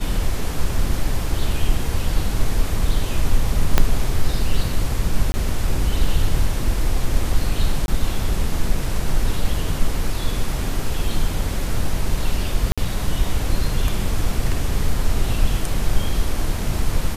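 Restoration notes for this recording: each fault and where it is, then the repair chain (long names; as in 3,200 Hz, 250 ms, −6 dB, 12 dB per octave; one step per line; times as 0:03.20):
0:03.78: click 0 dBFS
0:05.32–0:05.34: drop-out 20 ms
0:07.86–0:07.88: drop-out 21 ms
0:12.72–0:12.78: drop-out 56 ms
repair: click removal
repair the gap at 0:05.32, 20 ms
repair the gap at 0:07.86, 21 ms
repair the gap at 0:12.72, 56 ms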